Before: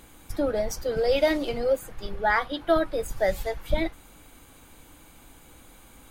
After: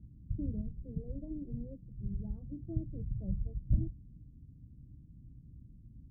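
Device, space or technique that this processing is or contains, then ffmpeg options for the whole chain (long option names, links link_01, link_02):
the neighbour's flat through the wall: -filter_complex "[0:a]highpass=46,lowpass=frequency=190:width=0.5412,lowpass=frequency=190:width=1.3066,equalizer=frequency=120:width_type=o:width=0.41:gain=5,asettb=1/sr,asplit=3[link_01][link_02][link_03];[link_01]atrim=end=0.614[link_04];[link_02]atrim=start=0.61:end=1.99,asetpts=PTS-STARTPTS,afade=type=in:duration=0.004:curve=qsin,afade=type=out:start_time=1.376:duration=0.004:curve=qsin,equalizer=frequency=91:width_type=o:width=2:gain=-7.5[link_05];[link_03]atrim=start=1.986[link_06];[link_04][link_05]acrossfade=duration=0.004:curve1=hsin:curve2=qsin[link_07];[link_07][link_06]acrossfade=duration=0.004:curve1=qsin:curve2=hsin,volume=4.5dB"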